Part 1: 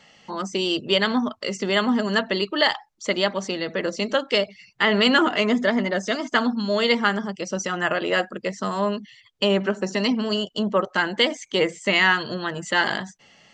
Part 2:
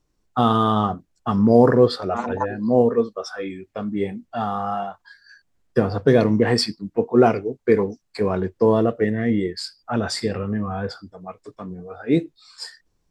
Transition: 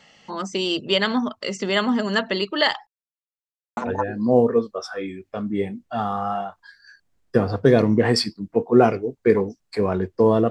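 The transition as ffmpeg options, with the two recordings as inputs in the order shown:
-filter_complex "[0:a]apad=whole_dur=10.5,atrim=end=10.5,asplit=2[a][b];[a]atrim=end=2.87,asetpts=PTS-STARTPTS,afade=t=out:st=2.866:d=0.004:c=hsin[c];[b]atrim=start=2.87:end=3.77,asetpts=PTS-STARTPTS,volume=0[d];[1:a]atrim=start=2.19:end=8.92,asetpts=PTS-STARTPTS,afade=t=in:d=0.004:c=hsin[e];[c][d][e]concat=n=3:v=0:a=1"

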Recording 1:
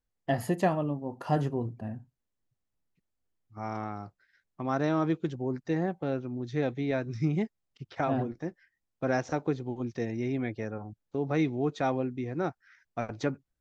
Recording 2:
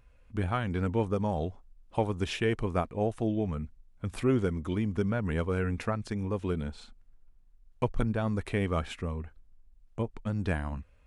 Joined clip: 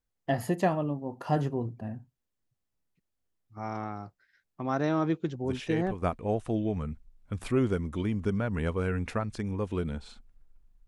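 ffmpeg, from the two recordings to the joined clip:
-filter_complex "[1:a]asplit=2[a][b];[0:a]apad=whole_dur=10.87,atrim=end=10.87,atrim=end=6.022[c];[b]atrim=start=2.738:end=7.59[d];[a]atrim=start=2.16:end=2.74,asetpts=PTS-STARTPTS,volume=-7dB,afade=t=in:d=0.004:c=hsin,afade=t=out:st=0.576:d=0.004:c=hsin,adelay=5440[e];[c][d]acrossfade=d=0.004:c1=hsin:c2=hsin[f];[f][e]amix=inputs=2:normalize=0"

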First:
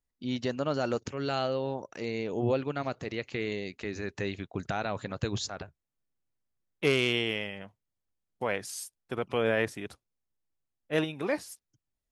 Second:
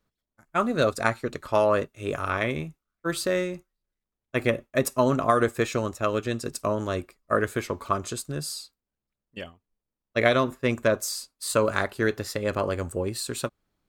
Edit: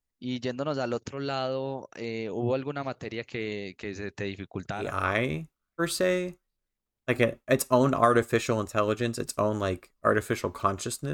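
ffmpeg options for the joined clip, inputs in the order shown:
-filter_complex "[0:a]apad=whole_dur=11.13,atrim=end=11.13,atrim=end=4.96,asetpts=PTS-STARTPTS[a];[1:a]atrim=start=1.94:end=8.39,asetpts=PTS-STARTPTS[b];[a][b]acrossfade=d=0.28:c1=tri:c2=tri"

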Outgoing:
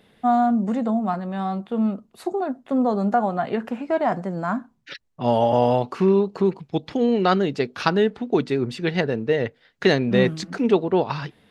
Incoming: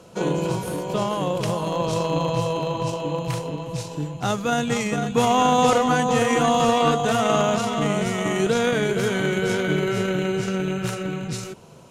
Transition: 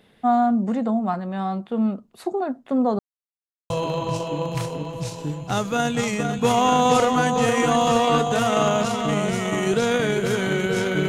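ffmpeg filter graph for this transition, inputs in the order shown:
-filter_complex "[0:a]apad=whole_dur=11.08,atrim=end=11.08,asplit=2[a][b];[a]atrim=end=2.99,asetpts=PTS-STARTPTS,afade=t=out:st=2.986:d=0.004:c=hsin[c];[b]atrim=start=2.99:end=3.7,asetpts=PTS-STARTPTS,volume=0[d];[1:a]atrim=start=2.43:end=9.81,asetpts=PTS-STARTPTS,afade=t=in:d=0.004:c=hsin[e];[c][d][e]concat=n=3:v=0:a=1"

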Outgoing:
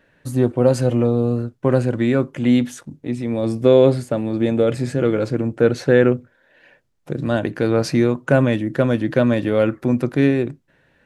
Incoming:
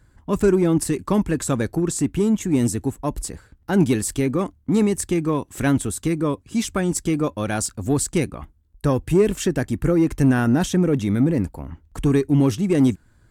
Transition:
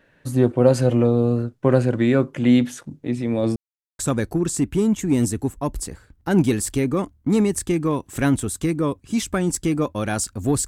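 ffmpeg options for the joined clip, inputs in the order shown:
-filter_complex "[0:a]apad=whole_dur=10.67,atrim=end=10.67,asplit=2[a][b];[a]atrim=end=3.56,asetpts=PTS-STARTPTS,afade=t=out:st=3.556:d=0.004:c=hsin[c];[b]atrim=start=3.56:end=3.99,asetpts=PTS-STARTPTS,volume=0[d];[1:a]atrim=start=1.41:end=8.09,asetpts=PTS-STARTPTS,afade=t=in:d=0.004:c=hsin[e];[c][d][e]concat=n=3:v=0:a=1"

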